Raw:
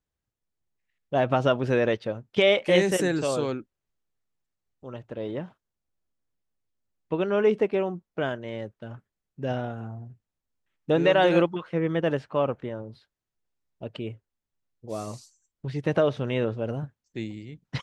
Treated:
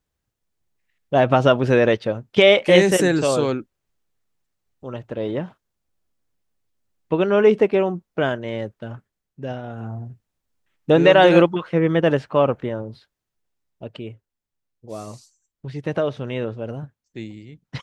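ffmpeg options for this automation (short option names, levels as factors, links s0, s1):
-af "volume=7.5,afade=t=out:st=8.79:d=0.83:silence=0.316228,afade=t=in:st=9.62:d=0.34:silence=0.298538,afade=t=out:st=12.76:d=1.33:silence=0.421697"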